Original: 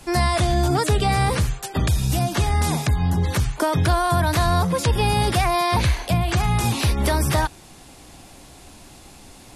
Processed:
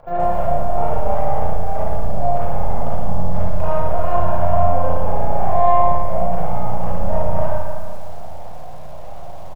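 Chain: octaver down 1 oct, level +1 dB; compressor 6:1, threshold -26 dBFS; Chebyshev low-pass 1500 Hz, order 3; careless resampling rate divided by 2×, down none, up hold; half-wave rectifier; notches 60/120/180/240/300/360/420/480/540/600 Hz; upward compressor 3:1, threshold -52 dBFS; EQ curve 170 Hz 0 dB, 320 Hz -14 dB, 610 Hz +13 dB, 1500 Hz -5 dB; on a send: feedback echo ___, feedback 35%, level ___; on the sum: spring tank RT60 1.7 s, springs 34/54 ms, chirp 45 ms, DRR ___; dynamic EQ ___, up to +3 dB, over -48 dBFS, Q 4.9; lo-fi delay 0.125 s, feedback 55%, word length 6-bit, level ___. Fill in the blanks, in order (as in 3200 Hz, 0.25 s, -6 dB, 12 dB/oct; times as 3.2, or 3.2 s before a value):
0.234 s, -21 dB, -9.5 dB, 220 Hz, -15 dB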